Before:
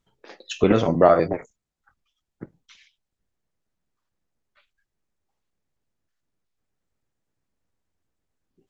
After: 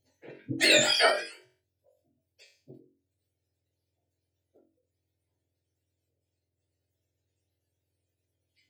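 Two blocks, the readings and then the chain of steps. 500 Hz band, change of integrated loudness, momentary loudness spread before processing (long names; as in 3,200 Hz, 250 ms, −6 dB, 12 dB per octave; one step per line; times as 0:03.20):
−10.0 dB, −3.0 dB, 15 LU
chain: frequency axis turned over on the octave scale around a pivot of 900 Hz
phaser with its sweep stopped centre 470 Hz, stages 4
on a send: flutter between parallel walls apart 3.7 metres, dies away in 0.26 s
on the sum: every ending faded ahead of time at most 110 dB per second
level +3.5 dB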